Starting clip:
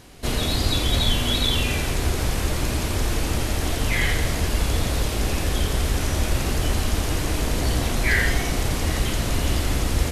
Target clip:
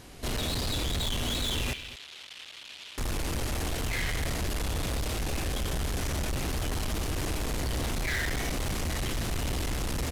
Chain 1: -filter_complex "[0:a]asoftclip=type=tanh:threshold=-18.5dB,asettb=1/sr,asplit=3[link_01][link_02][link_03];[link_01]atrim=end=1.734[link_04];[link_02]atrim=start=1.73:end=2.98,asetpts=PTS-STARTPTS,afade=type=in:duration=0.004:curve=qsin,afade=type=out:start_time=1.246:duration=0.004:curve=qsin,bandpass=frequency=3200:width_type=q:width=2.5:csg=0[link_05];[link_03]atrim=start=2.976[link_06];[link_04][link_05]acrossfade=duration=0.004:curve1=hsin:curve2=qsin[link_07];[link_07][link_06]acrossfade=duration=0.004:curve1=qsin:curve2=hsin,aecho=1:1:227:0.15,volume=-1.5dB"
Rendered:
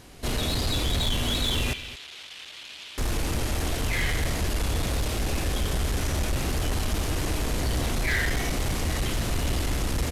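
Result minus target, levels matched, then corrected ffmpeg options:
soft clipping: distortion −6 dB
-filter_complex "[0:a]asoftclip=type=tanh:threshold=-26dB,asettb=1/sr,asplit=3[link_01][link_02][link_03];[link_01]atrim=end=1.734[link_04];[link_02]atrim=start=1.73:end=2.98,asetpts=PTS-STARTPTS,afade=type=in:duration=0.004:curve=qsin,afade=type=out:start_time=1.246:duration=0.004:curve=qsin,bandpass=frequency=3200:width_type=q:width=2.5:csg=0[link_05];[link_03]atrim=start=2.976[link_06];[link_04][link_05]acrossfade=duration=0.004:curve1=hsin:curve2=qsin[link_07];[link_07][link_06]acrossfade=duration=0.004:curve1=qsin:curve2=hsin,aecho=1:1:227:0.15,volume=-1.5dB"

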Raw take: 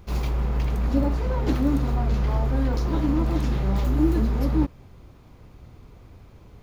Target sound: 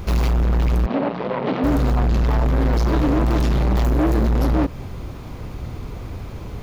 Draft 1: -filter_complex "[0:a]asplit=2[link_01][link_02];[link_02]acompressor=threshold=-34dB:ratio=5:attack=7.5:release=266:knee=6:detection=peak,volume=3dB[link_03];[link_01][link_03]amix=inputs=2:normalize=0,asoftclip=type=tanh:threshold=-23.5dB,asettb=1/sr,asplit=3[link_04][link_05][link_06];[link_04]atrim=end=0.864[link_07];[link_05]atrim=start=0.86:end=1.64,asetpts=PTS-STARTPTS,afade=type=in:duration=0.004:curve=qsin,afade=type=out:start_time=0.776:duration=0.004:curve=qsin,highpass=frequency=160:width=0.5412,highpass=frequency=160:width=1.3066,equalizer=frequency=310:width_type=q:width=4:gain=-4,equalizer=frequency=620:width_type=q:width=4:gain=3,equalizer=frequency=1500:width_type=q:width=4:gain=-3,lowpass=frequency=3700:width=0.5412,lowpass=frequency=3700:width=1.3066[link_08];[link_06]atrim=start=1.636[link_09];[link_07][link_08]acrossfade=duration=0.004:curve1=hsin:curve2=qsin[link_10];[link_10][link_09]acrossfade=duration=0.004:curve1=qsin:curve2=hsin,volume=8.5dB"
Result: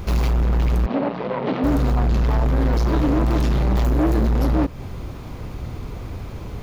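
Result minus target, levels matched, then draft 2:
downward compressor: peak gain reduction +7 dB
-filter_complex "[0:a]asplit=2[link_01][link_02];[link_02]acompressor=threshold=-25dB:ratio=5:attack=7.5:release=266:knee=6:detection=peak,volume=3dB[link_03];[link_01][link_03]amix=inputs=2:normalize=0,asoftclip=type=tanh:threshold=-23.5dB,asettb=1/sr,asplit=3[link_04][link_05][link_06];[link_04]atrim=end=0.864[link_07];[link_05]atrim=start=0.86:end=1.64,asetpts=PTS-STARTPTS,afade=type=in:duration=0.004:curve=qsin,afade=type=out:start_time=0.776:duration=0.004:curve=qsin,highpass=frequency=160:width=0.5412,highpass=frequency=160:width=1.3066,equalizer=frequency=310:width_type=q:width=4:gain=-4,equalizer=frequency=620:width_type=q:width=4:gain=3,equalizer=frequency=1500:width_type=q:width=4:gain=-3,lowpass=frequency=3700:width=0.5412,lowpass=frequency=3700:width=1.3066[link_08];[link_06]atrim=start=1.636[link_09];[link_07][link_08]acrossfade=duration=0.004:curve1=hsin:curve2=qsin[link_10];[link_10][link_09]acrossfade=duration=0.004:curve1=qsin:curve2=hsin,volume=8.5dB"

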